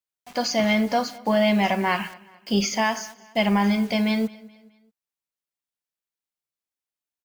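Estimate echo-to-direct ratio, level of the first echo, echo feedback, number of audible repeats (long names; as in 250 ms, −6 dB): −21.0 dB, −22.0 dB, 42%, 2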